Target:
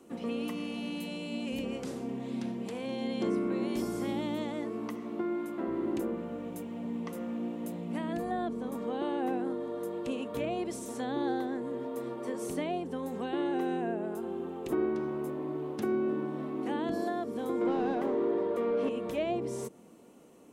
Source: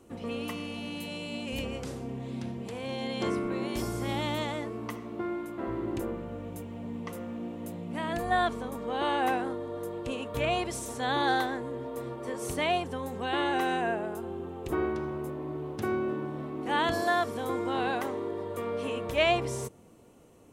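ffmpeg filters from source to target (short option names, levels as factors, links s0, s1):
-filter_complex "[0:a]asettb=1/sr,asplit=3[s0][s1][s2];[s0]atrim=end=17.614[s3];[s1]atrim=start=17.61:end=18.89,asetpts=PTS-STARTPTS,afade=t=in:d=0.004:c=qsin,afade=t=out:st=1.276:d=0.004:c=qsin,asplit=2[s4][s5];[s5]highpass=f=720:p=1,volume=10,asoftclip=type=tanh:threshold=0.126[s6];[s4][s6]amix=inputs=2:normalize=0,lowpass=f=1800:p=1,volume=0.501[s7];[s2]atrim=start=18.886[s8];[s3][s7]acrossfade=d=0.004:c1=hsin:c2=qsin[s9];[s9][s8]acrossfade=d=0.004:c1=qsin:c2=hsin,acrossover=split=540[s10][s11];[s10]lowshelf=f=140:t=q:w=1.5:g=-12[s12];[s11]acompressor=threshold=0.00794:ratio=6[s13];[s12][s13]amix=inputs=2:normalize=0"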